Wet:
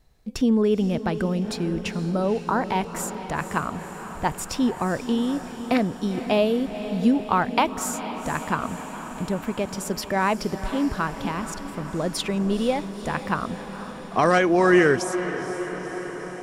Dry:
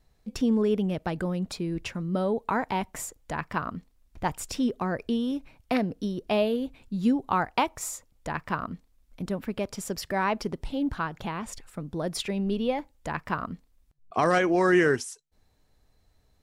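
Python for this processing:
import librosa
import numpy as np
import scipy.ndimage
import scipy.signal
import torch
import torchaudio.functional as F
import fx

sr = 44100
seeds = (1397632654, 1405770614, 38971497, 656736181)

y = fx.cheby1_bandstop(x, sr, low_hz=1500.0, high_hz=4100.0, order=2, at=(2.04, 2.61))
y = fx.echo_diffused(y, sr, ms=485, feedback_pct=71, wet_db=-11.5)
y = F.gain(torch.from_numpy(y), 4.0).numpy()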